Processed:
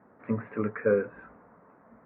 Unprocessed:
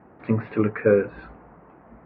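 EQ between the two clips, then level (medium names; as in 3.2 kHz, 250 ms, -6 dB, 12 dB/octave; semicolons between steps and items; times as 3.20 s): cabinet simulation 130–2000 Hz, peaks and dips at 150 Hz -8 dB, 340 Hz -9 dB, 780 Hz -6 dB; -4.0 dB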